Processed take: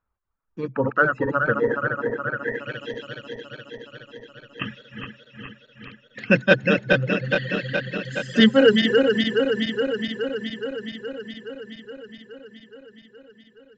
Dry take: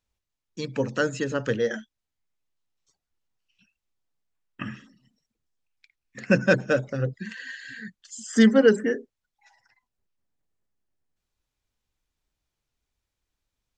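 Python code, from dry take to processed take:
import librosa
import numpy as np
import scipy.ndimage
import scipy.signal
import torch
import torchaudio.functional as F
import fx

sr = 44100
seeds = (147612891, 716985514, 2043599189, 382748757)

y = fx.reverse_delay_fb(x, sr, ms=210, feedback_pct=84, wet_db=-3)
y = fx.dereverb_blind(y, sr, rt60_s=1.5)
y = fx.filter_sweep_lowpass(y, sr, from_hz=1300.0, to_hz=3300.0, start_s=2.29, end_s=2.85, q=3.6)
y = y * librosa.db_to_amplitude(1.5)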